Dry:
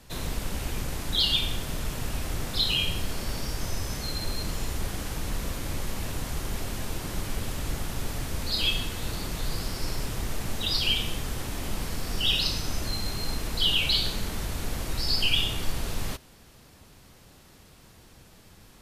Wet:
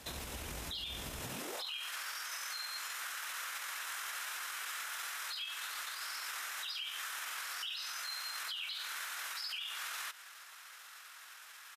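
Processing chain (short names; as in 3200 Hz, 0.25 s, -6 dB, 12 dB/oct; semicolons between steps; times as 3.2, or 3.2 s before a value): high-pass sweep 64 Hz -> 1400 Hz, 1.86–2.77; bell 91 Hz -6.5 dB 1.4 oct; notch 4500 Hz, Q 14; compressor 6:1, threshold -39 dBFS, peak gain reduction 18.5 dB; low shelf 410 Hz -7.5 dB; tempo 1.6×; limiter -35.5 dBFS, peak gain reduction 8 dB; gain +3.5 dB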